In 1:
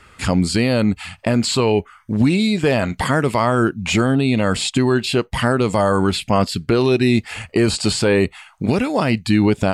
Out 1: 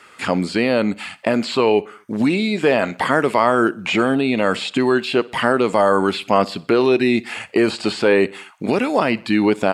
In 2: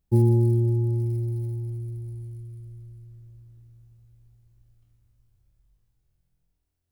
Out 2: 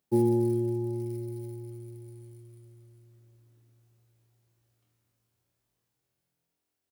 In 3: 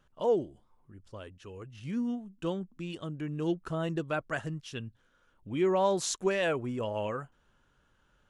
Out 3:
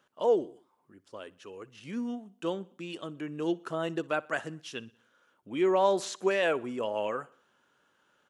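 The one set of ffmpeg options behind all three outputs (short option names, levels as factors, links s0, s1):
-filter_complex "[0:a]acrossover=split=3500[s0][s1];[s1]acompressor=threshold=0.00891:ratio=4:attack=1:release=60[s2];[s0][s2]amix=inputs=2:normalize=0,highpass=280,aecho=1:1:61|122|183|244:0.0708|0.0375|0.0199|0.0105,volume=1.33"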